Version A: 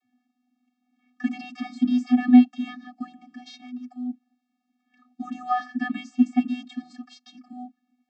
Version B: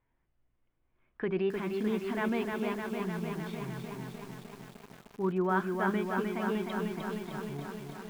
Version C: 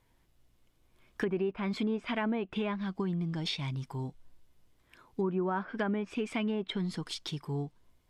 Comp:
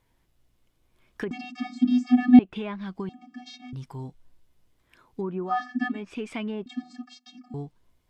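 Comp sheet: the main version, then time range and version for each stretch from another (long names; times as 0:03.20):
C
0:01.31–0:02.39: punch in from A
0:03.09–0:03.73: punch in from A
0:05.50–0:05.96: punch in from A, crossfade 0.16 s
0:06.66–0:07.54: punch in from A
not used: B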